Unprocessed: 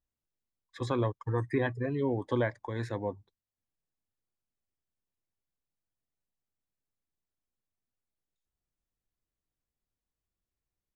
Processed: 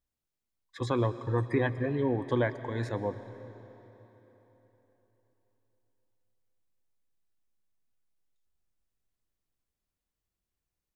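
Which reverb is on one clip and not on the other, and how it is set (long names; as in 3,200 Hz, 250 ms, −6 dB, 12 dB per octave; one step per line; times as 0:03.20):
comb and all-pass reverb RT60 3.9 s, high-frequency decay 0.85×, pre-delay 85 ms, DRR 12.5 dB
level +1.5 dB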